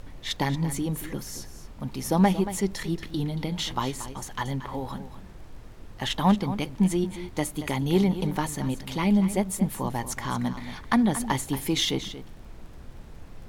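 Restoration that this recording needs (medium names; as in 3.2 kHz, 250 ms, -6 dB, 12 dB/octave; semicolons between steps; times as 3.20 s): clip repair -12 dBFS; de-click; noise print and reduce 28 dB; inverse comb 230 ms -12.5 dB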